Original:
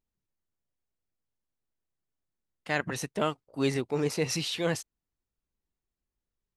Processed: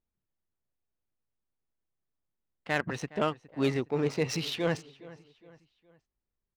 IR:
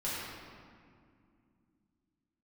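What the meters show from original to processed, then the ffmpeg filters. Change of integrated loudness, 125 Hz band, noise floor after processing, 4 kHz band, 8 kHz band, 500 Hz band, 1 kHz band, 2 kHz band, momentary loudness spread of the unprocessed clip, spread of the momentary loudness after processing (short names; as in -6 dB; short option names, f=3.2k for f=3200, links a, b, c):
-0.5 dB, 0.0 dB, under -85 dBFS, -2.5 dB, -6.5 dB, 0.0 dB, 0.0 dB, -0.5 dB, 6 LU, 20 LU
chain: -af "aecho=1:1:414|828|1242:0.112|0.0482|0.0207,adynamicsmooth=sensitivity=5:basefreq=2.8k"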